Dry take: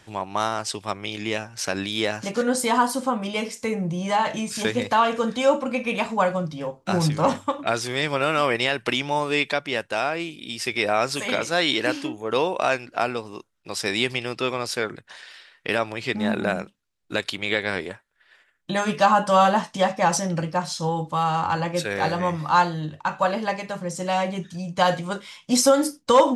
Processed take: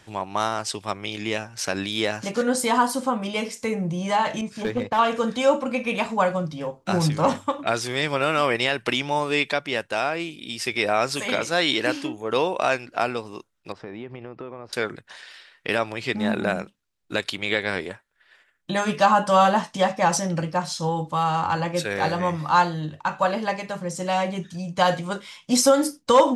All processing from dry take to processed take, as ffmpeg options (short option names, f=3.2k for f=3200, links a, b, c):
-filter_complex "[0:a]asettb=1/sr,asplit=3[a][b][c];[a]atrim=end=4.414[d];[b]atrim=start=4.41:end=4.99,asetpts=PTS-STARTPTS,afade=t=in:d=0.004:c=qsin,afade=t=out:st=0.576:d=0.004:c=qsin,agate=range=-33dB:threshold=-30dB:ratio=3:release=100:detection=peak,lowpass=f=1.3k:p=1,asoftclip=type=hard:threshold=-18dB[e];[c]atrim=start=4.986[f];[d][e]acrossfade=d=0.004:c1=hsin:c2=qsin[g];[g][f]acrossfade=d=0.004:c1=qsin:c2=hsin,asettb=1/sr,asplit=3[h][i][j];[h]atrim=end=13.724[k];[i]atrim=start=13.72:end=14.73,asetpts=PTS-STARTPTS,afade=t=in:d=0.004:c=qsin,afade=t=out:st=1.006:d=0.004:c=qsin,lowpass=1.1k,acompressor=threshold=-33dB:ratio=4:attack=3.2:release=140:knee=1:detection=peak[l];[j]atrim=start=14.726[m];[k][l]acrossfade=d=0.004:c1=hsin:c2=qsin[n];[n][m]acrossfade=d=0.004:c1=qsin:c2=hsin"